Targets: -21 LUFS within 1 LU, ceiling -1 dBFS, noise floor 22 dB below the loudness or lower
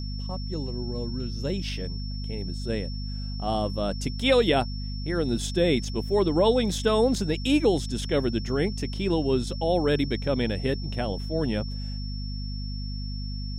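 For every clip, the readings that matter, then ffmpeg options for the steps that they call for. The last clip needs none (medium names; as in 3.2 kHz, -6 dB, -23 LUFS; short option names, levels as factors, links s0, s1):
hum 50 Hz; highest harmonic 250 Hz; hum level -30 dBFS; steady tone 5.4 kHz; tone level -41 dBFS; loudness -27.0 LUFS; peak level -9.0 dBFS; loudness target -21.0 LUFS
-> -af "bandreject=f=50:t=h:w=4,bandreject=f=100:t=h:w=4,bandreject=f=150:t=h:w=4,bandreject=f=200:t=h:w=4,bandreject=f=250:t=h:w=4"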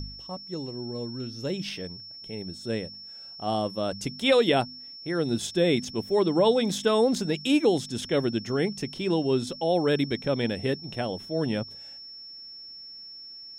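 hum not found; steady tone 5.4 kHz; tone level -41 dBFS
-> -af "bandreject=f=5400:w=30"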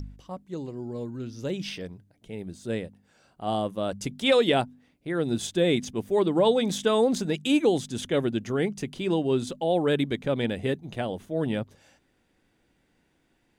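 steady tone not found; loudness -27.0 LUFS; peak level -9.5 dBFS; loudness target -21.0 LUFS
-> -af "volume=2"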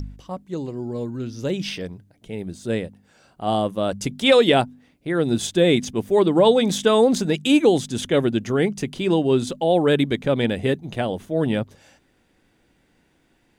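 loudness -21.0 LUFS; peak level -3.5 dBFS; noise floor -63 dBFS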